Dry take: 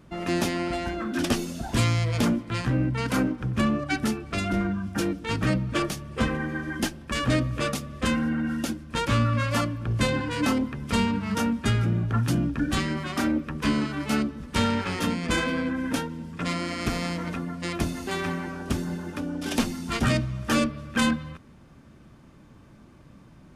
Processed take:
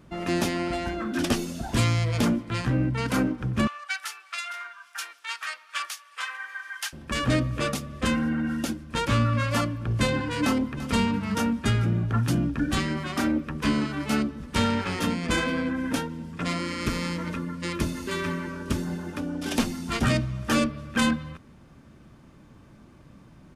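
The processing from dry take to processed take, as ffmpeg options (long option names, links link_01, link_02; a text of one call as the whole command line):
ffmpeg -i in.wav -filter_complex "[0:a]asettb=1/sr,asplit=3[link_01][link_02][link_03];[link_01]atrim=end=3.674[link_04];[link_02]atrim=start=3.67:end=6.93,asetpts=PTS-STARTPTS,afade=type=in:duration=0.004:curve=qsin,afade=type=out:start_time=3.256:duration=0.004:curve=qsin,highpass=frequency=1100:width=0.5412,highpass=frequency=1100:width=1.3066[link_05];[link_03]atrim=start=6.926[link_06];[link_04][link_05]acrossfade=duration=0.004:curve1=hsin:curve2=qsin[link_07];[link_07][link_06]acrossfade=duration=0.004:curve1=qsin:curve2=hsin,asplit=2[link_08][link_09];[link_09]afade=type=in:start_time=10.42:duration=0.01,afade=type=out:start_time=10.91:duration=0.01,aecho=0:1:340|680|1020:0.199526|0.0498816|0.0124704[link_10];[link_08][link_10]amix=inputs=2:normalize=0,asettb=1/sr,asplit=3[link_11][link_12][link_13];[link_11]atrim=end=16.594[link_14];[link_12]atrim=start=16.59:end=18.8,asetpts=PTS-STARTPTS,afade=type=in:duration=0.004:curve=qsin,afade=type=out:start_time=2.206:duration=0.004:curve=qsin,asuperstop=centerf=740:order=20:qfactor=4.9[link_15];[link_13]atrim=start=18.796[link_16];[link_14][link_15]acrossfade=duration=0.004:curve1=hsin:curve2=qsin[link_17];[link_17][link_16]acrossfade=duration=0.004:curve1=qsin:curve2=hsin" out.wav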